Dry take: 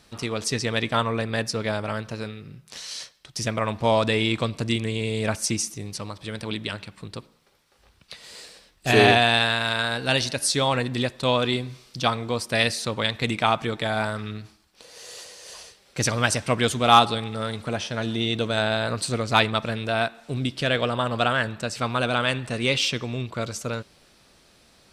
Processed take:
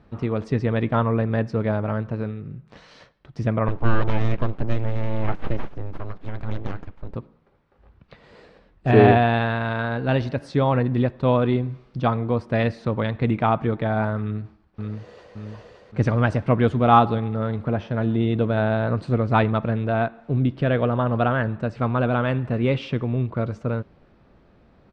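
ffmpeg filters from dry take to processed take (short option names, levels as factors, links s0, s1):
-filter_complex "[0:a]asettb=1/sr,asplit=3[s0][s1][s2];[s0]atrim=end=3.684[s3];[s1]atrim=start=3.68:end=7.15,asetpts=PTS-STARTPTS,afade=t=in:d=0.004:c=qsin,afade=t=out:st=3.466:d=0.004:c=qsin,aeval=exprs='abs(val(0))':c=same[s4];[s2]atrim=start=7.146[s5];[s3][s4]acrossfade=d=0.004:c1=hsin:c2=qsin[s6];[s6][s5]acrossfade=d=0.004:c1=qsin:c2=hsin,asplit=2[s7][s8];[s8]afade=t=in:st=14.21:d=0.01,afade=t=out:st=15.34:d=0.01,aecho=0:1:570|1140|1710|2280|2850|3420|3990|4560:0.707946|0.38937|0.214154|0.117784|0.0647815|0.0356298|0.0195964|0.010778[s9];[s7][s9]amix=inputs=2:normalize=0,lowpass=1500,lowshelf=f=390:g=8"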